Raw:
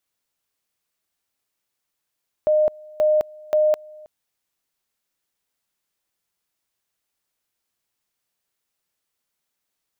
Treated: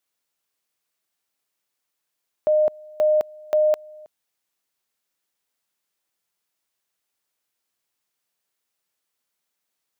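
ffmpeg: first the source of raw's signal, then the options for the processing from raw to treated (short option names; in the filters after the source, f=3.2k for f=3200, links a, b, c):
-f lavfi -i "aevalsrc='pow(10,(-14-25*gte(mod(t,0.53),0.21))/20)*sin(2*PI*612*t)':d=1.59:s=44100"
-af "lowshelf=f=130:g=-9.5"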